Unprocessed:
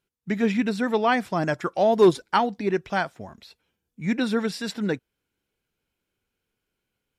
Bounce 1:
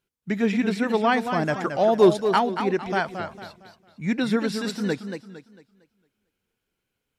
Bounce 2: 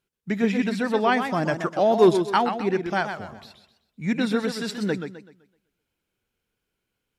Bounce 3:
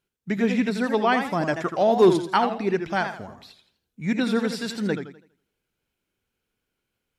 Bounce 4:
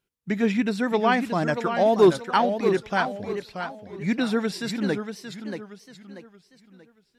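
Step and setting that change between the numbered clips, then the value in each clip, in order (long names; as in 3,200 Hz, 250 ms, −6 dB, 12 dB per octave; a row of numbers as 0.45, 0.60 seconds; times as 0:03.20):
feedback echo with a swinging delay time, delay time: 227, 127, 82, 632 milliseconds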